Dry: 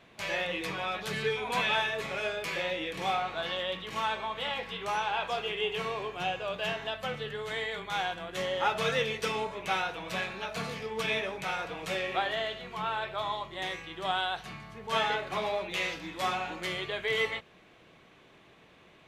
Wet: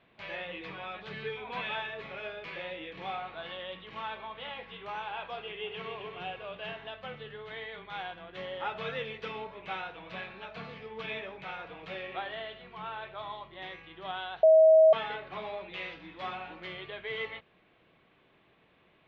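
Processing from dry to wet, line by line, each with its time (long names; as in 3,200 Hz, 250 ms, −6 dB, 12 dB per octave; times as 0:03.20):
0:05.39–0:05.91: delay throw 270 ms, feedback 55%, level −7.5 dB
0:14.43–0:14.93: beep over 637 Hz −8 dBFS
whole clip: low-pass filter 3,700 Hz 24 dB per octave; level −7 dB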